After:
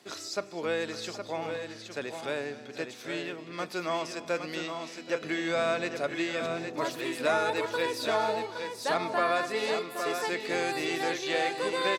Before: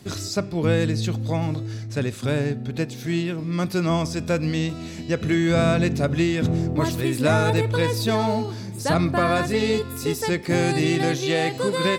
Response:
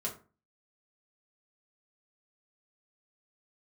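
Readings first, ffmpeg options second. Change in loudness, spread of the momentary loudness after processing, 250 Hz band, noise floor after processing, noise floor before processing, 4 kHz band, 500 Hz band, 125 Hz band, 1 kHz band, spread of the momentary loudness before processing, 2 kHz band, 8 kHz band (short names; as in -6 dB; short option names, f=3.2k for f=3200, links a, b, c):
-8.5 dB, 9 LU, -14.0 dB, -46 dBFS, -35 dBFS, -5.0 dB, -6.5 dB, -24.5 dB, -4.0 dB, 7 LU, -4.0 dB, -8.0 dB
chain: -filter_complex "[0:a]highpass=500,highshelf=f=7.5k:g=-10,asplit=2[a][b];[b]aecho=0:1:256|777|815:0.133|0.119|0.447[c];[a][c]amix=inputs=2:normalize=0,volume=-4dB"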